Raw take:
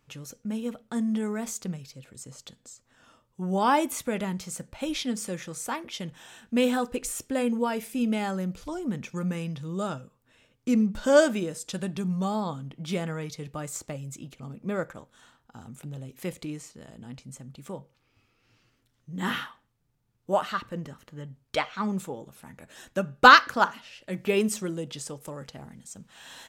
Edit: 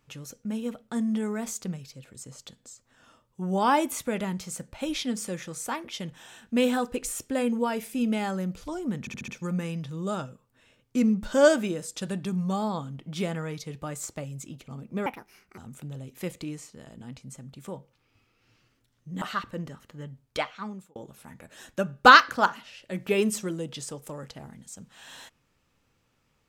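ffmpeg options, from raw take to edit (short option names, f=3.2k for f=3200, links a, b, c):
-filter_complex "[0:a]asplit=9[a][b][c][d][e][f][g][h][i];[a]atrim=end=9.072[j];[b]atrim=start=8.998:end=9.072[k];[c]atrim=start=8.998:end=9.072[l];[d]atrim=start=8.998:end=9.072[m];[e]atrim=start=8.998:end=14.784[n];[f]atrim=start=14.78:end=15.59,asetpts=PTS-STARTPTS,asetrate=69237,aresample=44100,atrim=end_sample=22752,asetpts=PTS-STARTPTS[o];[g]atrim=start=15.586:end=19.232[p];[h]atrim=start=20.398:end=22.14,asetpts=PTS-STARTPTS,afade=t=out:st=1.032:d=0.71[q];[i]atrim=start=22.14,asetpts=PTS-STARTPTS,afade=t=in:d=0.004:c=hsin[r];[j][k]acrossfade=d=0.004:c1=hsin:c2=hsin[s];[s][l]acrossfade=d=0.004:c1=hsin:c2=hsin[t];[t][m]acrossfade=d=0.004:c1=hsin:c2=hsin[u];[u][n]acrossfade=d=0.004:c1=hsin:c2=hsin[v];[v][o]acrossfade=d=0.004:c1=hsin:c2=hsin[w];[w][p]acrossfade=d=0.004:c1=hsin:c2=hsin[x];[q][r]concat=n=2:v=0:a=1[y];[x][y]acrossfade=d=0.004:c1=hsin:c2=hsin"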